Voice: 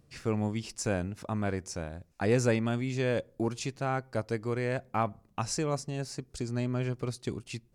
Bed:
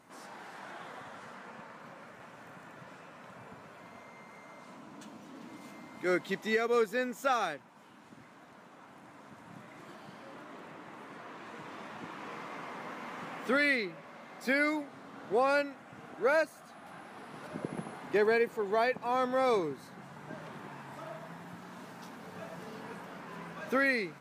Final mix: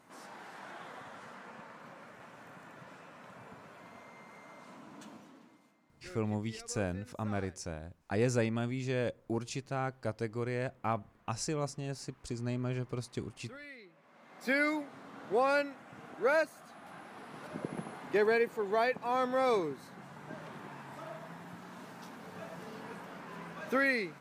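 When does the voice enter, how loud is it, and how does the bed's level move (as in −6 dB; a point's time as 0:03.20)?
5.90 s, −4.0 dB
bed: 0:05.14 −1.5 dB
0:05.78 −21.5 dB
0:13.75 −21.5 dB
0:14.52 −1 dB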